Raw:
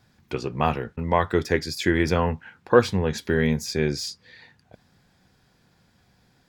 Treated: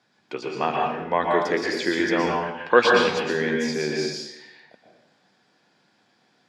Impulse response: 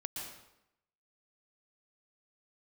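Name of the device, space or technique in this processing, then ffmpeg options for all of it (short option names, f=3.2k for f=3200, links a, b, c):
supermarket ceiling speaker: -filter_complex "[0:a]highpass=98,asettb=1/sr,asplit=3[a][b][c];[a]atrim=end=2.364[d];[b]atrim=start=2.36:end=3.09,asetpts=PTS-STARTPTS,afade=t=in:d=0.004:c=qsin,afade=t=out:st=0.726:d=0.004:c=qsin,equalizer=f=2.7k:t=o:w=2.1:g=10.5[e];[c]atrim=start=3.086[f];[d][e]acrossfade=d=0.004:c1=hsin:c2=qsin[g];[g][f]acrossfade=d=0.004:c1=qsin:c2=hsin,highpass=280,lowpass=6.4k[h];[1:a]atrim=start_sample=2205[i];[h][i]afir=irnorm=-1:irlink=0,volume=2dB"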